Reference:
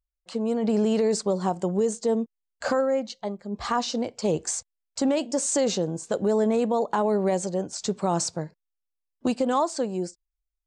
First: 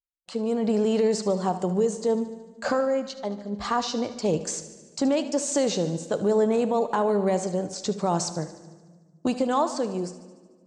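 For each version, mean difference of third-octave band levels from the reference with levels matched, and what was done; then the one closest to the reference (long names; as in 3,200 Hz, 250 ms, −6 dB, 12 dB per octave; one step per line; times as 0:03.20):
3.5 dB: noise gate with hold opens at −49 dBFS
dynamic equaliser 9,000 Hz, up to −6 dB, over −48 dBFS, Q 2
feedback echo with a high-pass in the loop 74 ms, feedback 65%, high-pass 230 Hz, level −14.5 dB
rectangular room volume 1,800 cubic metres, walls mixed, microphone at 0.38 metres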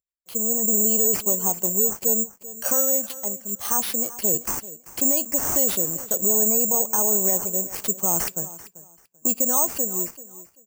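13.0 dB: gate on every frequency bin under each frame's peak −30 dB strong
high-pass filter 110 Hz
on a send: repeating echo 388 ms, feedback 22%, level −17 dB
on the sum: bad sample-rate conversion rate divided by 6×, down none, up zero stuff
level −5 dB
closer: first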